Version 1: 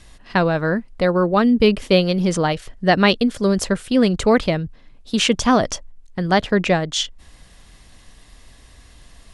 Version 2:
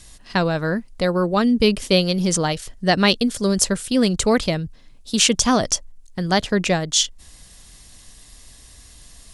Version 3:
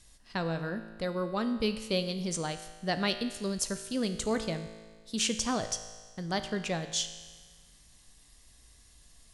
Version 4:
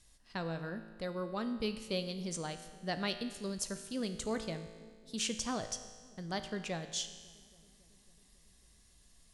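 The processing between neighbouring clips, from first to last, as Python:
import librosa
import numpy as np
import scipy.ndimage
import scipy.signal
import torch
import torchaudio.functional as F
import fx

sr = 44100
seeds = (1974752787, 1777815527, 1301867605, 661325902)

y1 = fx.bass_treble(x, sr, bass_db=2, treble_db=13)
y1 = y1 * 10.0 ** (-3.0 / 20.0)
y2 = fx.comb_fb(y1, sr, f0_hz=55.0, decay_s=1.5, harmonics='all', damping=0.0, mix_pct=70)
y2 = y2 * 10.0 ** (-4.5 / 20.0)
y3 = fx.echo_filtered(y2, sr, ms=275, feedback_pct=79, hz=840.0, wet_db=-22)
y3 = y3 * 10.0 ** (-6.0 / 20.0)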